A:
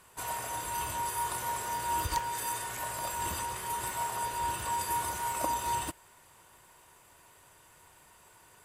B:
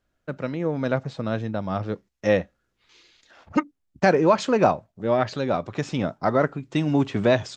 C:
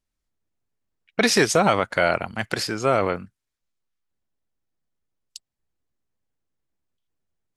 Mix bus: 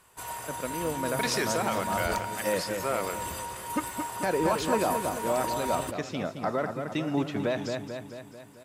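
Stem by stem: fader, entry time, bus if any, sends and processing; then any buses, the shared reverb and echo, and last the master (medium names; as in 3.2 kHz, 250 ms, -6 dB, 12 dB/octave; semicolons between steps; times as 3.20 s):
-1.5 dB, 0.00 s, no bus, no send, no echo send, none
-4.0 dB, 0.20 s, bus A, no send, echo send -10.5 dB, none
-9.0 dB, 0.00 s, bus A, no send, echo send -16.5 dB, none
bus A: 0.0 dB, bass shelf 190 Hz -10.5 dB; peak limiter -17.5 dBFS, peak gain reduction 8 dB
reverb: none
echo: feedback delay 220 ms, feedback 57%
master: none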